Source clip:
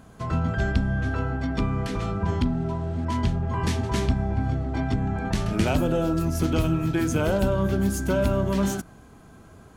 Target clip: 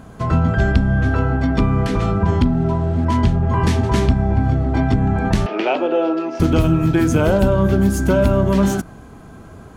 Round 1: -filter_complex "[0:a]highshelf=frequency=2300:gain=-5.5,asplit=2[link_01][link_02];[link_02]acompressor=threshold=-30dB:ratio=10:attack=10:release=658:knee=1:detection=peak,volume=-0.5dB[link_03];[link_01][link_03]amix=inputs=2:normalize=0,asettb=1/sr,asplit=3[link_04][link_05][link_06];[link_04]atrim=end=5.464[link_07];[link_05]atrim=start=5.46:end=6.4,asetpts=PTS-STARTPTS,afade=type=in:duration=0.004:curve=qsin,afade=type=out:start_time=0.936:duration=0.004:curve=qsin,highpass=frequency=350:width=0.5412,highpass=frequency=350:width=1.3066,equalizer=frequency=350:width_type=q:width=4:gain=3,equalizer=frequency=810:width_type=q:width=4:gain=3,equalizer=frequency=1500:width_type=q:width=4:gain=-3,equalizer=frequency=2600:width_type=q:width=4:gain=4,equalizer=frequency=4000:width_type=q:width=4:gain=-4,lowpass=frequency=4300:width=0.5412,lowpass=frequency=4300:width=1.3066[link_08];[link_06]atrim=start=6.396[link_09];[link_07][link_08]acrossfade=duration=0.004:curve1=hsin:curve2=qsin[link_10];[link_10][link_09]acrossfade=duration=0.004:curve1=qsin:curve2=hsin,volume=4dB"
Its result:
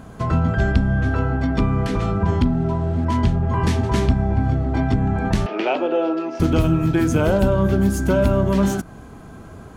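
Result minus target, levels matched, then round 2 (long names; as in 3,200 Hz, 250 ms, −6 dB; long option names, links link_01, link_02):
downward compressor: peak gain reduction +8 dB
-filter_complex "[0:a]highshelf=frequency=2300:gain=-5.5,asplit=2[link_01][link_02];[link_02]acompressor=threshold=-21dB:ratio=10:attack=10:release=658:knee=1:detection=peak,volume=-0.5dB[link_03];[link_01][link_03]amix=inputs=2:normalize=0,asettb=1/sr,asplit=3[link_04][link_05][link_06];[link_04]atrim=end=5.464[link_07];[link_05]atrim=start=5.46:end=6.4,asetpts=PTS-STARTPTS,afade=type=in:duration=0.004:curve=qsin,afade=type=out:start_time=0.936:duration=0.004:curve=qsin,highpass=frequency=350:width=0.5412,highpass=frequency=350:width=1.3066,equalizer=frequency=350:width_type=q:width=4:gain=3,equalizer=frequency=810:width_type=q:width=4:gain=3,equalizer=frequency=1500:width_type=q:width=4:gain=-3,equalizer=frequency=2600:width_type=q:width=4:gain=4,equalizer=frequency=4000:width_type=q:width=4:gain=-4,lowpass=frequency=4300:width=0.5412,lowpass=frequency=4300:width=1.3066[link_08];[link_06]atrim=start=6.396[link_09];[link_07][link_08]acrossfade=duration=0.004:curve1=hsin:curve2=qsin[link_10];[link_10][link_09]acrossfade=duration=0.004:curve1=qsin:curve2=hsin,volume=4dB"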